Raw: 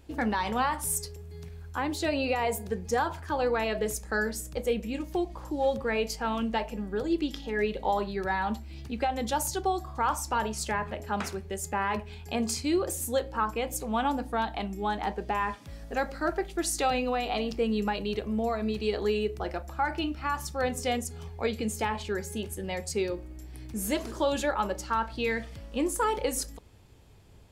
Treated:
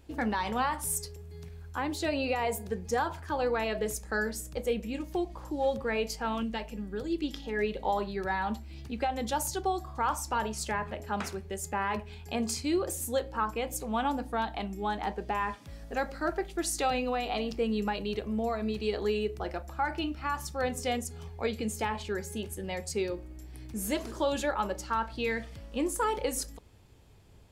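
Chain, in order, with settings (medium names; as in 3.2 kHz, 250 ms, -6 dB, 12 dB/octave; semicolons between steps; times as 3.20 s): 6.43–7.24 s: peaking EQ 800 Hz -7 dB 1.8 oct; trim -2 dB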